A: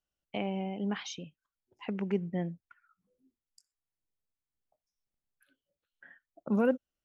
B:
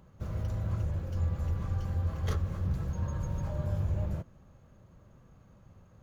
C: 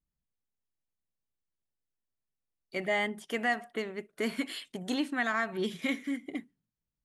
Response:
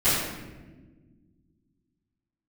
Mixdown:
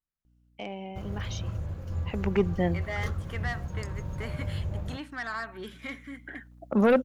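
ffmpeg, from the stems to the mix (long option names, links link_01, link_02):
-filter_complex "[0:a]lowshelf=frequency=270:gain=-9,aeval=exprs='0.178*sin(PI/2*2.51*val(0)/0.178)':channel_layout=same,aeval=exprs='val(0)+0.00282*(sin(2*PI*60*n/s)+sin(2*PI*2*60*n/s)/2+sin(2*PI*3*60*n/s)/3+sin(2*PI*4*60*n/s)/4+sin(2*PI*5*60*n/s)/5)':channel_layout=same,adelay=250,afade=type=in:start_time=2.03:duration=0.35:silence=0.251189[link_01];[1:a]acontrast=24,aeval=exprs='sgn(val(0))*max(abs(val(0))-0.00562,0)':channel_layout=same,adelay=750,volume=-6dB[link_02];[2:a]equalizer=frequency=1300:width_type=o:width=1.9:gain=11,asoftclip=type=tanh:threshold=-18dB,volume=-10dB[link_03];[link_01][link_02][link_03]amix=inputs=3:normalize=0"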